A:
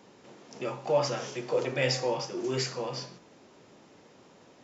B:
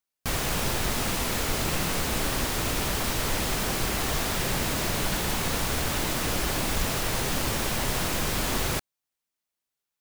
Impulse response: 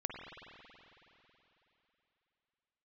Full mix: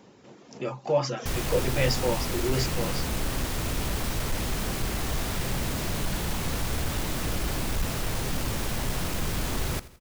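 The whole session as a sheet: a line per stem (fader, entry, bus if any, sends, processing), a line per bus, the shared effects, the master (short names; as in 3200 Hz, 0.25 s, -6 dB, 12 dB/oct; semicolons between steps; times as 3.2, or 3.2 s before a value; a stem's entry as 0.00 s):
+0.5 dB, 0.00 s, no send, no echo send, reverb removal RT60 0.52 s
-3.0 dB, 1.00 s, no send, echo send -17.5 dB, soft clip -23 dBFS, distortion -15 dB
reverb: off
echo: feedback echo 83 ms, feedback 47%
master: low shelf 240 Hz +7.5 dB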